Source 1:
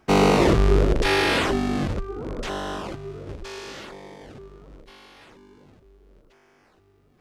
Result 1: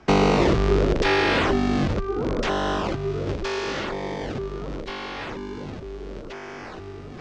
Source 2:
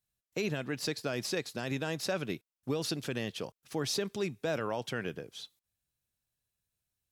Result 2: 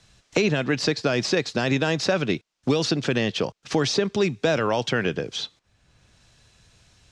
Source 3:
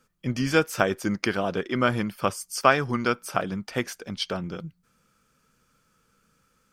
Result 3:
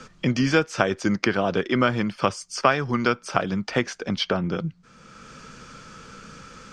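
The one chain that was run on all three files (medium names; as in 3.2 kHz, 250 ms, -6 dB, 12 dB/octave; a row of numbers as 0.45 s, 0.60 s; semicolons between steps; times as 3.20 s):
low-pass 6.7 kHz 24 dB/octave; three bands compressed up and down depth 70%; normalise loudness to -24 LUFS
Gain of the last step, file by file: +2.0 dB, +11.5 dB, +2.5 dB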